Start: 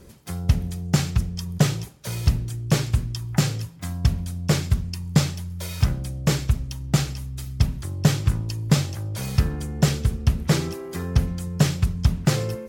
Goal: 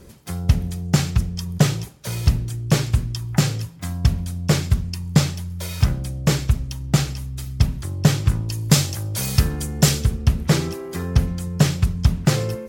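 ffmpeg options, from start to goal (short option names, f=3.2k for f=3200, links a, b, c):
-filter_complex "[0:a]asettb=1/sr,asplit=3[a][b][c];[a]atrim=end=8.524[d];[b]atrim=start=8.52:end=10.05,asetpts=PTS-STARTPTS,afade=t=in:d=0.004:c=qsin,afade=t=out:st=1.526:d=0.004:c=qsin,highshelf=f=3.9k:g=10[e];[c]atrim=start=10.046[f];[d][e]acrossfade=d=0.004:c1=hsin:c2=qsin[g];[g][f]acrossfade=d=0.004:c1=qsin:c2=hsin,volume=2.5dB"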